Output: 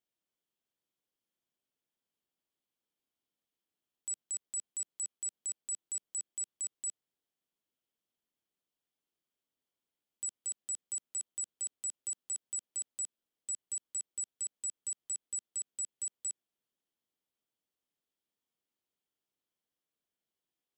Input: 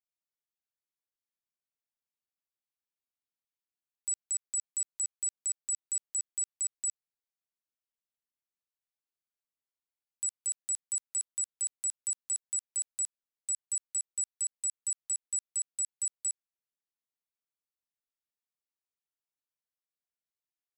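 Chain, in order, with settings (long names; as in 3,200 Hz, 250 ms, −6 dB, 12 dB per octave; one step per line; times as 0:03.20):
parametric band 290 Hz +11.5 dB 2.6 octaves
brickwall limiter −32 dBFS, peak gain reduction 5.5 dB
parametric band 3,200 Hz +8 dB 0.32 octaves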